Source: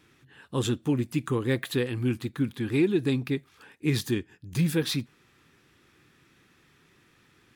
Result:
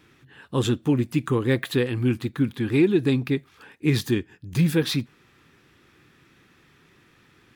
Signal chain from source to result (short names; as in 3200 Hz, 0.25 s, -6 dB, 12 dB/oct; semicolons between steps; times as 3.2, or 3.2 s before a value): bell 9300 Hz -4.5 dB 1.7 oct; gain +4.5 dB